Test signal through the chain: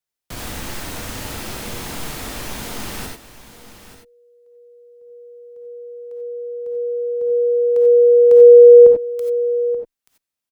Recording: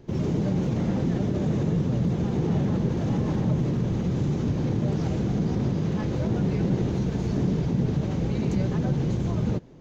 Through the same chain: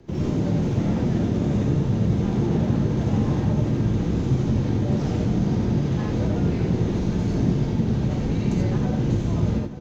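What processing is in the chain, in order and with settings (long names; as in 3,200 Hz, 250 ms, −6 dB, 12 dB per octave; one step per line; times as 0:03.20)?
frequency shifter −13 Hz
single-tap delay 881 ms −13.5 dB
reverb whose tail is shaped and stops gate 110 ms rising, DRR 0.5 dB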